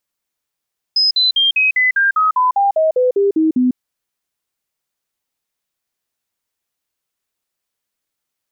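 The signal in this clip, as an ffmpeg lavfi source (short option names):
-f lavfi -i "aevalsrc='0.299*clip(min(mod(t,0.2),0.15-mod(t,0.2))/0.005,0,1)*sin(2*PI*5070*pow(2,-floor(t/0.2)/3)*mod(t,0.2))':d=2.8:s=44100"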